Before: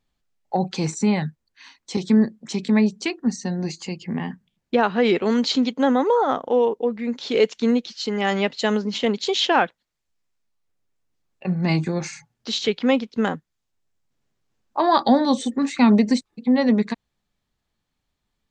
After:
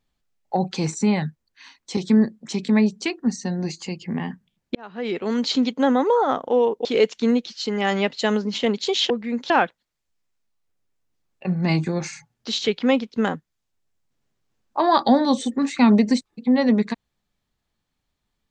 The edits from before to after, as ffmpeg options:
-filter_complex "[0:a]asplit=5[a][b][c][d][e];[a]atrim=end=4.75,asetpts=PTS-STARTPTS,afade=t=out:st=4.746:d=0.004:c=hsin[f];[b]atrim=start=4.75:end=6.852,asetpts=PTS-STARTPTS,afade=t=in:d=0.85[g];[c]atrim=start=7.248:end=9.502[h];[d]atrim=start=6.848:end=7.252[i];[e]atrim=start=9.498[j];[f][g]concat=n=2:v=0:a=1[k];[k][h]acrossfade=d=0.004:c1=hsin:c2=hsin[l];[l][i]acrossfade=d=0.004:c1=hsin:c2=hsin[m];[m][j]acrossfade=d=0.004:c1=hsin:c2=hsin"

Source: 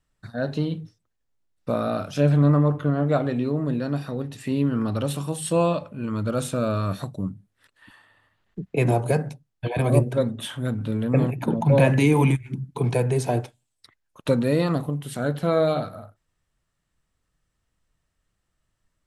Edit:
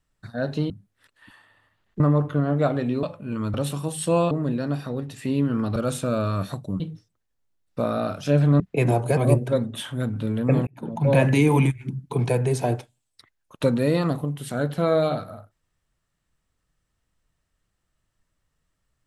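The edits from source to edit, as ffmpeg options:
-filter_complex "[0:a]asplit=11[a][b][c][d][e][f][g][h][i][j][k];[a]atrim=end=0.702[l];[b]atrim=start=7.298:end=8.602[m];[c]atrim=start=2.498:end=3.532[n];[d]atrim=start=5.748:end=6.262[o];[e]atrim=start=4.978:end=5.752[p];[f]atrim=start=3.528:end=4.982[q];[g]atrim=start=6.258:end=7.302[r];[h]atrim=start=0.698:end=2.502[s];[i]atrim=start=8.598:end=9.172[t];[j]atrim=start=9.818:end=11.32,asetpts=PTS-STARTPTS,afade=t=out:st=1.498:d=0.004:c=hsin[u];[k]atrim=start=11.32,asetpts=PTS-STARTPTS,afade=t=in:d=0.55[v];[l][m]acrossfade=d=0.004:c1=hsin:c2=hsin[w];[w][n]acrossfade=d=0.004:c1=hsin:c2=hsin[x];[x][o]acrossfade=d=0.004:c1=hsin:c2=hsin[y];[y][p]acrossfade=d=0.004:c1=hsin:c2=hsin[z];[z][q]acrossfade=d=0.004:c1=hsin:c2=hsin[aa];[aa][r]acrossfade=d=0.004:c1=hsin:c2=hsin[ab];[ab][s]acrossfade=d=0.004:c1=hsin:c2=hsin[ac];[ac][t]acrossfade=d=0.004:c1=hsin:c2=hsin[ad];[u][v]concat=n=2:v=0:a=1[ae];[ad][ae]acrossfade=d=0.004:c1=hsin:c2=hsin"

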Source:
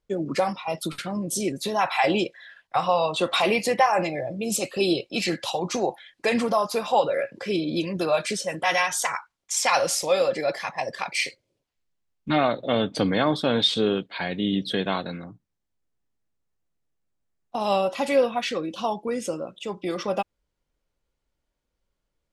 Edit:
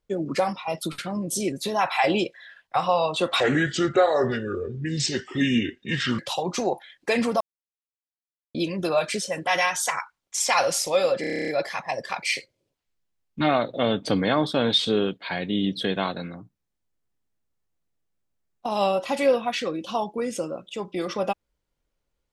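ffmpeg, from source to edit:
-filter_complex "[0:a]asplit=14[a][b][c][d][e][f][g][h][i][j][k][l][m][n];[a]atrim=end=3.404[o];[b]atrim=start=3.4:end=5.35,asetpts=PTS-STARTPTS,asetrate=30870,aresample=44100,atrim=end_sample=122850,asetpts=PTS-STARTPTS[p];[c]atrim=start=5.346:end=6.57,asetpts=PTS-STARTPTS,afade=t=out:st=1.22:d=0.004:c=hsin[q];[d]atrim=start=6.57:end=7.71,asetpts=PTS-STARTPTS,volume=0[r];[e]atrim=start=7.71:end=10.402,asetpts=PTS-STARTPTS,afade=t=in:d=0.004:c=hsin[s];[f]atrim=start=10.368:end=10.402[t];[g]atrim=start=10.368:end=10.402[u];[h]atrim=start=10.368:end=10.402[v];[i]atrim=start=10.368:end=10.402[w];[j]atrim=start=10.368:end=10.402[x];[k]atrim=start=10.368:end=10.402[y];[l]atrim=start=10.368:end=10.402[z];[m]atrim=start=10.368:end=10.402[aa];[n]atrim=start=10.368[ab];[o][p]acrossfade=d=0.004:c1=hsin:c2=hsin[ac];[q][r][s]concat=n=3:v=0:a=1[ad];[ac][ad]acrossfade=d=0.004:c1=hsin:c2=hsin[ae];[ae][t]acrossfade=d=0.004:c1=hsin:c2=hsin[af];[af][u]acrossfade=d=0.004:c1=hsin:c2=hsin[ag];[ag][v]acrossfade=d=0.004:c1=hsin:c2=hsin[ah];[ah][w]acrossfade=d=0.004:c1=hsin:c2=hsin[ai];[ai][x]acrossfade=d=0.004:c1=hsin:c2=hsin[aj];[aj][y]acrossfade=d=0.004:c1=hsin:c2=hsin[ak];[ak][z]acrossfade=d=0.004:c1=hsin:c2=hsin[al];[al][aa]acrossfade=d=0.004:c1=hsin:c2=hsin[am];[am][ab]acrossfade=d=0.004:c1=hsin:c2=hsin"

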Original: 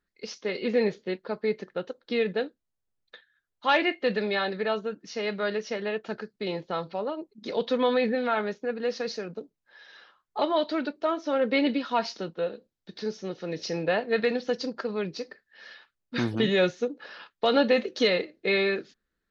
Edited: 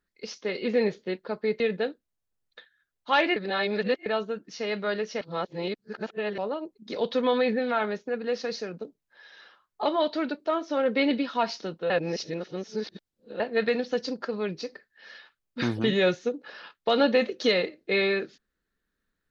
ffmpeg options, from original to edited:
-filter_complex "[0:a]asplit=8[a][b][c][d][e][f][g][h];[a]atrim=end=1.602[i];[b]atrim=start=2.158:end=3.922[j];[c]atrim=start=3.918:end=4.622,asetpts=PTS-STARTPTS,areverse[k];[d]atrim=start=4.618:end=5.772[l];[e]atrim=start=5.768:end=6.942,asetpts=PTS-STARTPTS,areverse[m];[f]atrim=start=6.938:end=12.462[n];[g]atrim=start=12.458:end=13.962,asetpts=PTS-STARTPTS,areverse[o];[h]atrim=start=13.958[p];[i][j]acrossfade=d=0.004:c1=hsin:c2=hsin[q];[q][k]acrossfade=d=0.004:c1=hsin:c2=hsin[r];[r][l]acrossfade=d=0.004:c1=hsin:c2=hsin[s];[s][m]acrossfade=d=0.004:c1=hsin:c2=hsin[t];[t][n]acrossfade=d=0.004:c1=hsin:c2=hsin[u];[u][o]acrossfade=d=0.004:c1=hsin:c2=hsin[v];[v][p]acrossfade=d=0.004:c1=hsin:c2=hsin"

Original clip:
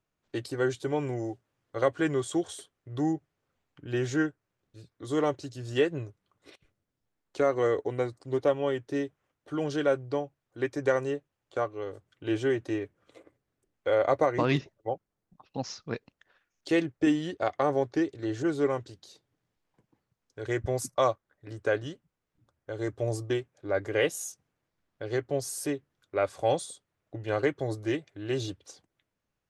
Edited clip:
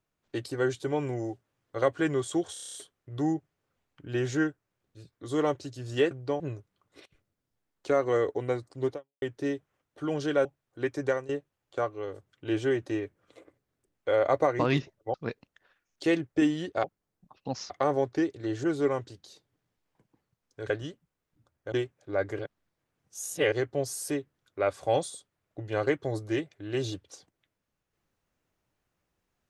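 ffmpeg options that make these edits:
-filter_complex "[0:a]asplit=20[a][b][c][d][e][f][g][h][i][j][k][l][m][n][o][p][q][r][s][t];[a]atrim=end=2.562[u];[b]atrim=start=2.528:end=2.562[v];[c]atrim=start=2.528:end=2.562[w];[d]atrim=start=2.528:end=2.562[x];[e]atrim=start=2.528:end=2.562[y];[f]atrim=start=2.528:end=2.562[z];[g]atrim=start=2.528:end=2.562[aa];[h]atrim=start=2.528:end=5.902[ab];[i]atrim=start=9.948:end=10.242[ac];[j]atrim=start=5.898:end=8.72,asetpts=PTS-STARTPTS,afade=t=out:st=2.532:d=0.29:c=exp[ad];[k]atrim=start=8.72:end=9.952,asetpts=PTS-STARTPTS,afade=t=in:d=0.004:c=hsin[ae];[l]atrim=start=10.238:end=11.08,asetpts=PTS-STARTPTS,afade=t=out:st=0.592:d=0.25:silence=0.158489[af];[m]atrim=start=11.08:end=14.932,asetpts=PTS-STARTPTS,afade=t=in:d=0.004:c=hsin:silence=0.158489[ag];[n]atrim=start=15.788:end=17.492[ah];[o]atrim=start=14.928:end=15.792[ai];[p]atrim=start=17.488:end=20.492[aj];[q]atrim=start=21.718:end=22.742[ak];[r]atrim=start=23.278:end=23.952[al];[s]atrim=start=23.948:end=25.082,asetpts=PTS-STARTPTS,areverse[am];[t]atrim=start=25.078[an];[u][v]acrossfade=d=0.004:c1=hsin:c2=hsin[ao];[ao][w]acrossfade=d=0.004:c1=hsin:c2=hsin[ap];[ap][x]acrossfade=d=0.004:c1=hsin:c2=hsin[aq];[aq][y]acrossfade=d=0.004:c1=hsin:c2=hsin[ar];[ar][z]acrossfade=d=0.004:c1=hsin:c2=hsin[as];[as][aa]acrossfade=d=0.004:c1=hsin:c2=hsin[at];[at][ab]acrossfade=d=0.004:c1=hsin:c2=hsin[au];[au][ac]acrossfade=d=0.004:c1=hsin:c2=hsin[av];[ad][ae]concat=n=2:v=0:a=1[aw];[av][aw]acrossfade=d=0.004:c1=hsin:c2=hsin[ax];[af][ag]concat=n=2:v=0:a=1[ay];[ax][ay]acrossfade=d=0.004:c1=hsin:c2=hsin[az];[az][ah]acrossfade=d=0.004:c1=hsin:c2=hsin[ba];[ba][ai]acrossfade=d=0.004:c1=hsin:c2=hsin[bb];[bb][aj]acrossfade=d=0.004:c1=hsin:c2=hsin[bc];[bc][ak]acrossfade=d=0.004:c1=hsin:c2=hsin[bd];[bd][al]acrossfade=d=0.004:c1=hsin:c2=hsin[be];[be][am]acrossfade=d=0.004:c1=hsin:c2=hsin[bf];[bf][an]acrossfade=d=0.004:c1=hsin:c2=hsin"

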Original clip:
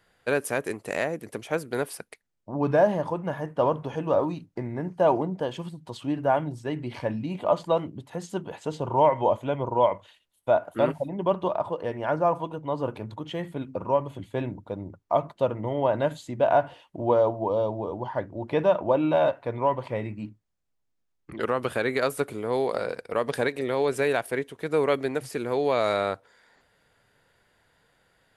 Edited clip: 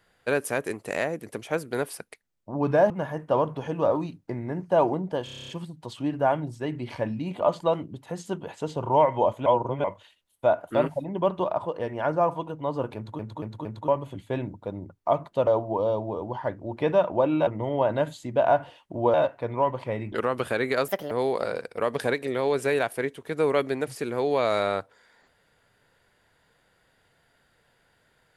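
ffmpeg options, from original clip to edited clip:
-filter_complex "[0:a]asplit=22[a][b][c][d][e][f][g][h][i][j][k][l][m][n][o][p][q][r][s][t][u][v];[a]atrim=end=2.902[w];[b]atrim=start=3.178:end=5.552[x];[c]atrim=start=5.518:end=5.552[y];[d]atrim=start=5.518:end=5.552[z];[e]atrim=start=5.518:end=5.552[aa];[f]atrim=start=5.518:end=5.552[ab];[g]atrim=start=5.518:end=5.552[ac];[h]atrim=start=5.518:end=5.552[ad];[i]atrim=start=5.518:end=5.552[ae];[j]atrim=start=5.518:end=9.502[af];[k]atrim=start=9.498:end=9.882,asetpts=PTS-STARTPTS,areverse[ag];[l]atrim=start=9.878:end=13.232[ah];[m]atrim=start=12.998:end=13.232[ai];[n]atrim=start=12.998:end=13.232[aj];[o]atrim=start=12.998:end=13.232[ak];[p]atrim=start=13.918:end=15.512[al];[q]atrim=start=17.178:end=19.182[am];[r]atrim=start=15.508:end=17.182[an];[s]atrim=start=19.178:end=20.162[ao];[t]atrim=start=21.368:end=22.134[ap];[u]atrim=start=22.13:end=22.45,asetpts=PTS-STARTPTS,asetrate=60858,aresample=44100,atrim=end_sample=10226,asetpts=PTS-STARTPTS[aq];[v]atrim=start=22.446[ar];[w][x]acrossfade=d=0.004:c1=hsin:c2=hsin[as];[as][y]acrossfade=d=0.004:c1=hsin:c2=hsin[at];[at][z]acrossfade=d=0.004:c1=hsin:c2=hsin[au];[au][aa]acrossfade=d=0.004:c1=hsin:c2=hsin[av];[av][ab]acrossfade=d=0.004:c1=hsin:c2=hsin[aw];[aw][ac]acrossfade=d=0.004:c1=hsin:c2=hsin[ax];[ax][ad]acrossfade=d=0.004:c1=hsin:c2=hsin[ay];[ay][ae]acrossfade=d=0.004:c1=hsin:c2=hsin[az];[az][af]acrossfade=d=0.004:c1=hsin:c2=hsin[ba];[ba][ag]acrossfade=d=0.004:c1=hsin:c2=hsin[bb];[bb][ah]acrossfade=d=0.004:c1=hsin:c2=hsin[bc];[bc][ai]acrossfade=d=0.004:c1=hsin:c2=hsin[bd];[bd][aj]acrossfade=d=0.004:c1=hsin:c2=hsin[be];[be][ak]acrossfade=d=0.004:c1=hsin:c2=hsin[bf];[bf][al]acrossfade=d=0.004:c1=hsin:c2=hsin[bg];[bg][am]acrossfade=d=0.004:c1=hsin:c2=hsin[bh];[bh][an]acrossfade=d=0.004:c1=hsin:c2=hsin[bi];[bi][ao]acrossfade=d=0.004:c1=hsin:c2=hsin[bj];[bj][ap]acrossfade=d=0.004:c1=hsin:c2=hsin[bk];[bk][aq]acrossfade=d=0.004:c1=hsin:c2=hsin[bl];[bl][ar]acrossfade=d=0.004:c1=hsin:c2=hsin"

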